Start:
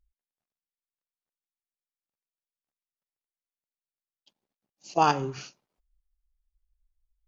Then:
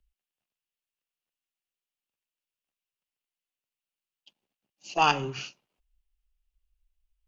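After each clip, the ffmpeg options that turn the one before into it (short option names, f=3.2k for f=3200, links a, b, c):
-filter_complex "[0:a]equalizer=f=2.8k:t=o:w=0.52:g=10.5,acrossover=split=110|740|2200[a][b][c][d];[b]asoftclip=type=tanh:threshold=-27dB[e];[a][e][c][d]amix=inputs=4:normalize=0"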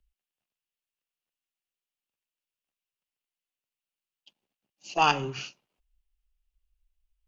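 -af anull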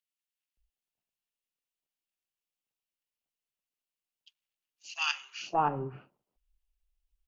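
-filter_complex "[0:a]acrossover=split=1400[a][b];[a]adelay=570[c];[c][b]amix=inputs=2:normalize=0,volume=-2.5dB"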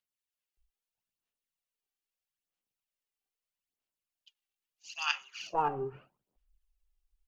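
-af "aphaser=in_gain=1:out_gain=1:delay=2.6:decay=0.55:speed=0.78:type=sinusoidal,volume=-3.5dB"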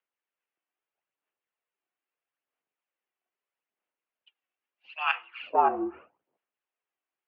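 -filter_complex "[0:a]highpass=f=160:t=q:w=0.5412,highpass=f=160:t=q:w=1.307,lowpass=f=3.4k:t=q:w=0.5176,lowpass=f=3.4k:t=q:w=0.7071,lowpass=f=3.4k:t=q:w=1.932,afreqshift=-56,acrossover=split=280 2600:gain=0.141 1 0.178[a][b][c];[a][b][c]amix=inputs=3:normalize=0,volume=8dB"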